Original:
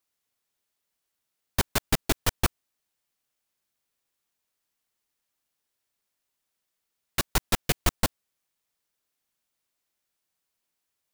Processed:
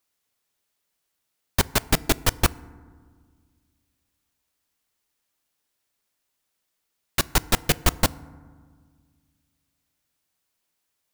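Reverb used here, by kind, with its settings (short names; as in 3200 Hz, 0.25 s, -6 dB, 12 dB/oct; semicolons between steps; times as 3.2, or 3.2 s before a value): FDN reverb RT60 1.7 s, low-frequency decay 1.4×, high-frequency decay 0.35×, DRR 19 dB; gain +4 dB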